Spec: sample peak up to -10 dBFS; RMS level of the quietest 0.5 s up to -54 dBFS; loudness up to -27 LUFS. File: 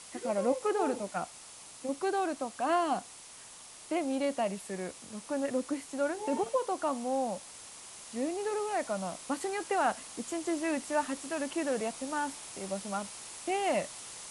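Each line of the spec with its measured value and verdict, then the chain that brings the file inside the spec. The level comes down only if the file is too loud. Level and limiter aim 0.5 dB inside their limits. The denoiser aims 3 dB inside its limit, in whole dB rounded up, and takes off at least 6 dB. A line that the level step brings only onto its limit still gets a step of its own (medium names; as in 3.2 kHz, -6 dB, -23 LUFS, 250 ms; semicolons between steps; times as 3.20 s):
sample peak -17.0 dBFS: pass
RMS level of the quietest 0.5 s -50 dBFS: fail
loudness -33.5 LUFS: pass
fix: noise reduction 7 dB, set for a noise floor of -50 dBFS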